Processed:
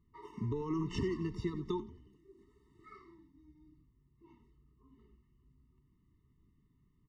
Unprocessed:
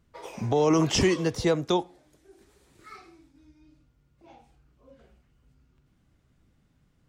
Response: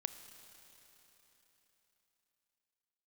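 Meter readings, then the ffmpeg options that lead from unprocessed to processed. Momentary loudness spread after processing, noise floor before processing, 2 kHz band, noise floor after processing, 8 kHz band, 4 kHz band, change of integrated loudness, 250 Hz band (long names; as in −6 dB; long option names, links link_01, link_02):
21 LU, −67 dBFS, −17.5 dB, −72 dBFS, below −25 dB, −20.0 dB, −13.0 dB, −11.0 dB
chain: -filter_complex "[0:a]lowpass=frequency=1400:poles=1,acompressor=threshold=-27dB:ratio=5,asplit=6[link_01][link_02][link_03][link_04][link_05][link_06];[link_02]adelay=91,afreqshift=-140,volume=-14dB[link_07];[link_03]adelay=182,afreqshift=-280,volume=-20dB[link_08];[link_04]adelay=273,afreqshift=-420,volume=-26dB[link_09];[link_05]adelay=364,afreqshift=-560,volume=-32.1dB[link_10];[link_06]adelay=455,afreqshift=-700,volume=-38.1dB[link_11];[link_01][link_07][link_08][link_09][link_10][link_11]amix=inputs=6:normalize=0,afftfilt=real='re*eq(mod(floor(b*sr/1024/440),2),0)':imag='im*eq(mod(floor(b*sr/1024/440),2),0)':win_size=1024:overlap=0.75,volume=-4.5dB"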